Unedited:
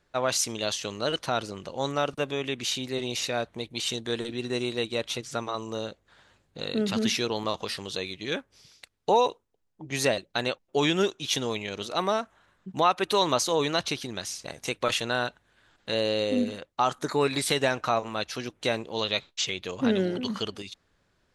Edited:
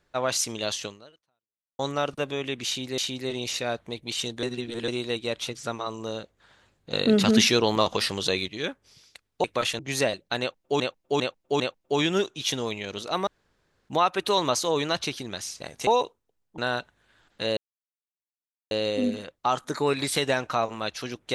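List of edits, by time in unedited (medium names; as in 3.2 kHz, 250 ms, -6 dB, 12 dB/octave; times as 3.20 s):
0.85–1.79 s: fade out exponential
2.66–2.98 s: loop, 2 plays
4.11–4.56 s: reverse
6.61–8.16 s: gain +7 dB
9.12–9.83 s: swap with 14.71–15.06 s
10.44–10.84 s: loop, 4 plays
12.11–12.73 s: room tone
16.05 s: insert silence 1.14 s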